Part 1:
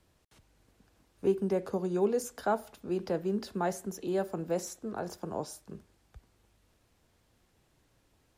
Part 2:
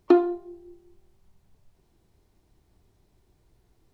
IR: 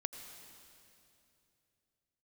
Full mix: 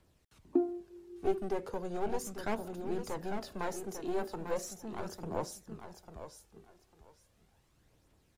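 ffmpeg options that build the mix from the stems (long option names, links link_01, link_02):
-filter_complex "[0:a]aeval=exprs='clip(val(0),-1,0.0158)':channel_layout=same,volume=-3dB,asplit=2[link_01][link_02];[link_02]volume=-8dB[link_03];[1:a]acompressor=mode=upward:threshold=-31dB:ratio=2.5,bandpass=frequency=250:width_type=q:width=3.1:csg=0,adelay=450,volume=-2dB[link_04];[link_03]aecho=0:1:848|1696|2544:1|0.19|0.0361[link_05];[link_01][link_04][link_05]amix=inputs=3:normalize=0,aphaser=in_gain=1:out_gain=1:delay=2.9:decay=0.36:speed=0.37:type=triangular"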